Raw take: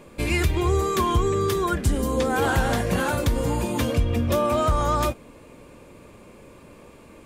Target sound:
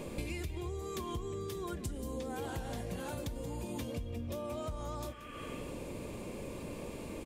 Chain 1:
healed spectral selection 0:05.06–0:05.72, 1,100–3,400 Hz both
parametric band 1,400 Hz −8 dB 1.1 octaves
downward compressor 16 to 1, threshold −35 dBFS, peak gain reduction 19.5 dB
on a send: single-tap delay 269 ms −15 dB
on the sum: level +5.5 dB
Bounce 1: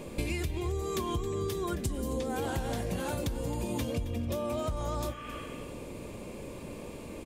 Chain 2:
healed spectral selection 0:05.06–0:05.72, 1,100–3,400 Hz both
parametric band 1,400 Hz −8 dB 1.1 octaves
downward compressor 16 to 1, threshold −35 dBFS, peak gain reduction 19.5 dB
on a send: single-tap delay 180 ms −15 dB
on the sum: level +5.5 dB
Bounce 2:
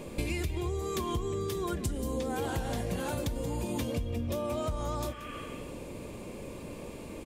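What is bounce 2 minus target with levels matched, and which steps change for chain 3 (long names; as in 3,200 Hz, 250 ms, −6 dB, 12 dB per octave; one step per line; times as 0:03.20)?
downward compressor: peak gain reduction −6.5 dB
change: downward compressor 16 to 1, threshold −42 dBFS, peak gain reduction 26 dB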